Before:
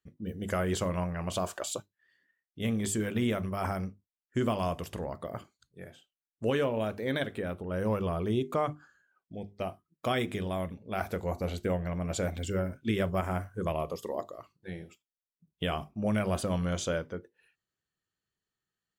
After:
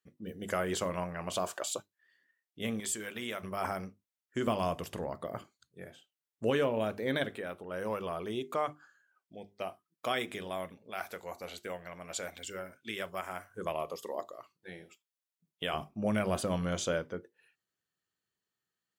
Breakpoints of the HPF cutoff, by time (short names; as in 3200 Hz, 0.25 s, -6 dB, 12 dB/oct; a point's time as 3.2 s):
HPF 6 dB/oct
330 Hz
from 2.8 s 1200 Hz
from 3.43 s 370 Hz
from 4.47 s 150 Hz
from 7.36 s 630 Hz
from 10.91 s 1400 Hz
from 13.5 s 570 Hz
from 15.74 s 160 Hz